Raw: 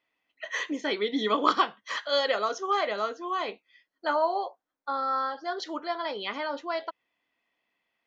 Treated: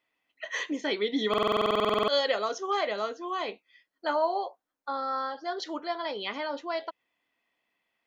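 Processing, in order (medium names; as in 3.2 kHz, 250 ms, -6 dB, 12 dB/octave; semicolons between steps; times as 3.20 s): dynamic bell 1.3 kHz, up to -4 dB, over -41 dBFS, Q 1.8; buffer glitch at 1.29 s, samples 2048, times 16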